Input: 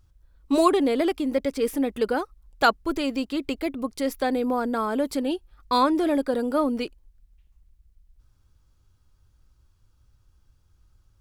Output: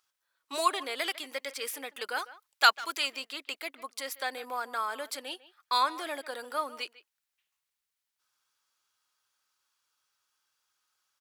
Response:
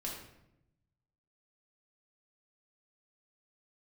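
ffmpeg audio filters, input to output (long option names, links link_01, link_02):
-filter_complex "[0:a]highpass=1200,asplit=2[link_01][link_02];[link_02]adelay=150,highpass=300,lowpass=3400,asoftclip=type=hard:threshold=-19dB,volume=-17dB[link_03];[link_01][link_03]amix=inputs=2:normalize=0,asplit=3[link_04][link_05][link_06];[link_04]afade=type=out:start_time=0.96:duration=0.02[link_07];[link_05]adynamicequalizer=threshold=0.0126:dfrequency=1700:dqfactor=0.7:tfrequency=1700:tqfactor=0.7:attack=5:release=100:ratio=0.375:range=3:mode=boostabove:tftype=highshelf,afade=type=in:start_time=0.96:duration=0.02,afade=type=out:start_time=3.07:duration=0.02[link_08];[link_06]afade=type=in:start_time=3.07:duration=0.02[link_09];[link_07][link_08][link_09]amix=inputs=3:normalize=0"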